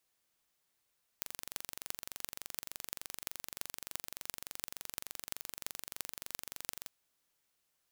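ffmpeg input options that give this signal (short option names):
-f lavfi -i "aevalsrc='0.376*eq(mod(n,1885),0)*(0.5+0.5*eq(mod(n,15080),0))':d=5.67:s=44100"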